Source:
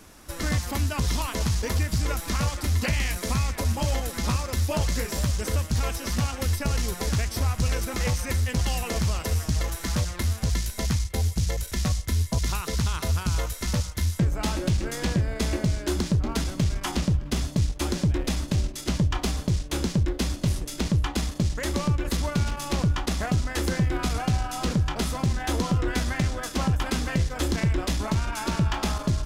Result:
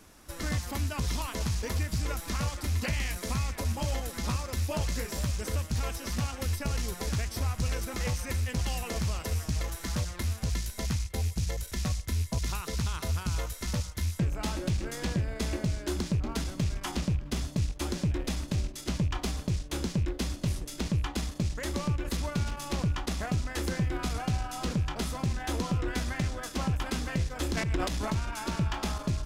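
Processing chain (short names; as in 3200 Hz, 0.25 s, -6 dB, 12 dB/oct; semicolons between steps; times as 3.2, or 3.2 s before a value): rattling part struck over -23 dBFS, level -34 dBFS; 27.52–28.11 transient shaper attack -10 dB, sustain +9 dB; gain -5.5 dB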